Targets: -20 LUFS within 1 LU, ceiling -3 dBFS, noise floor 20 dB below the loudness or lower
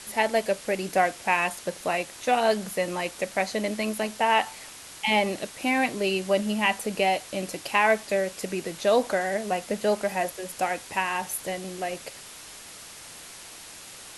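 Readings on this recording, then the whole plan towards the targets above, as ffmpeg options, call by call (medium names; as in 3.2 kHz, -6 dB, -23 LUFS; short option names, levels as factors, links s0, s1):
noise floor -44 dBFS; noise floor target -47 dBFS; loudness -26.5 LUFS; peak level -8.0 dBFS; loudness target -20.0 LUFS
-> -af "afftdn=nr=6:nf=-44"
-af "volume=2.11,alimiter=limit=0.708:level=0:latency=1"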